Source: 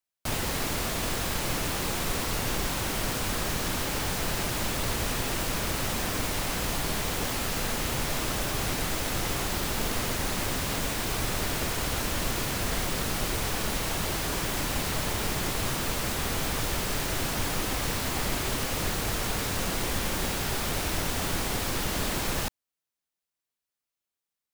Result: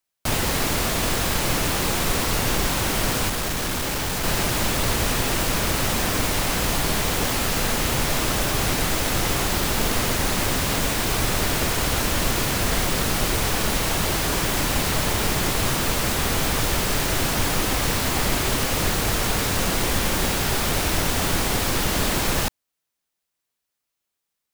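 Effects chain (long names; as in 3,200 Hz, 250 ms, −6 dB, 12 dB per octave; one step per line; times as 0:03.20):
0:03.29–0:04.24: hard clipping −29.5 dBFS, distortion −22 dB
level +7 dB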